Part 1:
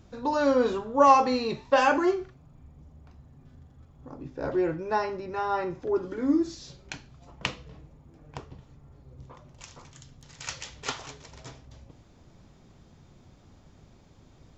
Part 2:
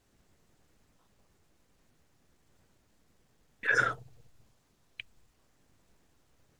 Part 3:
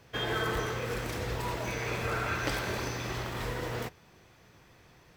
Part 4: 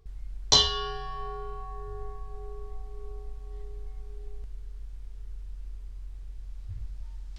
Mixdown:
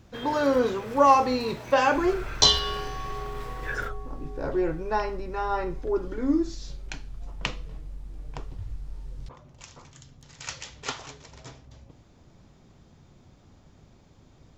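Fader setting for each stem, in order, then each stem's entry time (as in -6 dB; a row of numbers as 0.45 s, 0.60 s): 0.0 dB, -6.5 dB, -7.0 dB, +1.5 dB; 0.00 s, 0.00 s, 0.00 s, 1.90 s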